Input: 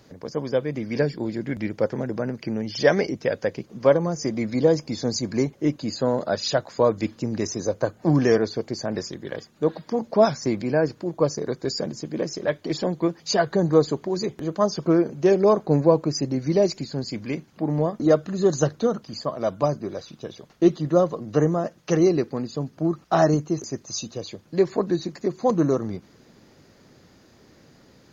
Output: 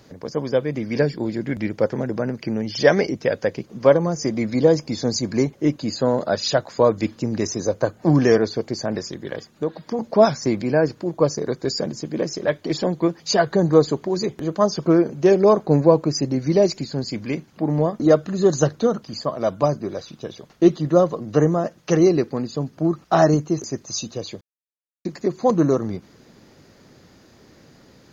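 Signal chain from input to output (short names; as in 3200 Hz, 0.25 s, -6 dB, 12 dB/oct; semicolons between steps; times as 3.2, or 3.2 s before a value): 8.95–9.99 compressor 2:1, threshold -27 dBFS, peak gain reduction 7 dB; 24.41–25.05 mute; gain +3 dB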